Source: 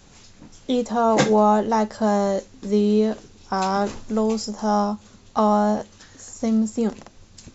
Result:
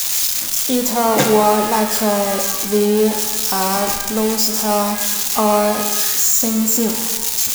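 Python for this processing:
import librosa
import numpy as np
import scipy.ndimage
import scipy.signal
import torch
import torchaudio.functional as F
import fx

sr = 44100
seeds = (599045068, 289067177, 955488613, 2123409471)

y = x + 0.5 * 10.0 ** (-12.0 / 20.0) * np.diff(np.sign(x), prepend=np.sign(x[:1]))
y = fx.rev_shimmer(y, sr, seeds[0], rt60_s=1.2, semitones=12, shimmer_db=-8, drr_db=5.5)
y = F.gain(torch.from_numpy(y), 2.0).numpy()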